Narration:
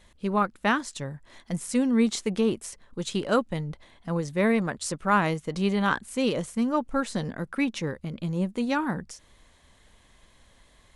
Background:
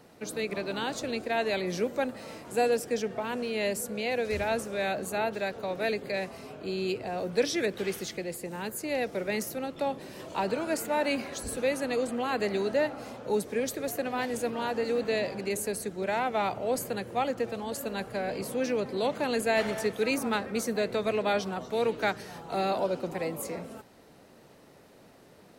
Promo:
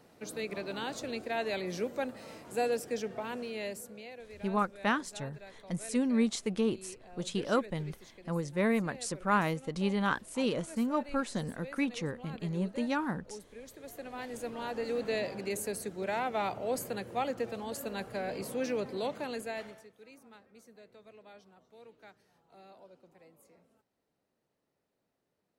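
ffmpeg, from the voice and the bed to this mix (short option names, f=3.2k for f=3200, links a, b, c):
-filter_complex "[0:a]adelay=4200,volume=-5.5dB[a];[1:a]volume=10dB,afade=t=out:st=3.26:d=0.9:silence=0.199526,afade=t=in:st=13.64:d=1.49:silence=0.177828,afade=t=out:st=18.82:d=1.04:silence=0.0707946[b];[a][b]amix=inputs=2:normalize=0"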